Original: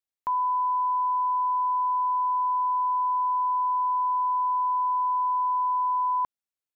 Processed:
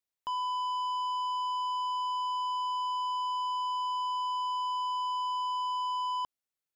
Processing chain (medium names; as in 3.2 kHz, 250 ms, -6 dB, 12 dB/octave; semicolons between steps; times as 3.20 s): saturation -31 dBFS, distortion -12 dB